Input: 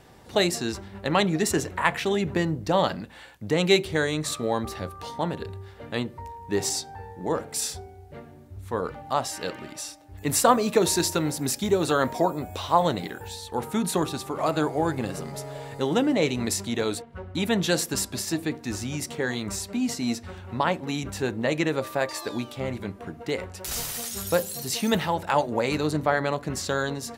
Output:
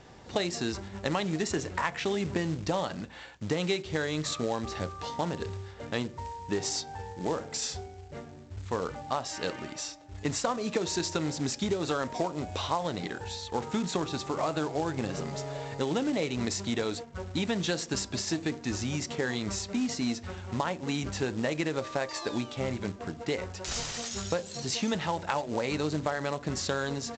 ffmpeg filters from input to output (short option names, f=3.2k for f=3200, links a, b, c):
-af "acompressor=threshold=-26dB:ratio=8,aresample=16000,acrusher=bits=4:mode=log:mix=0:aa=0.000001,aresample=44100"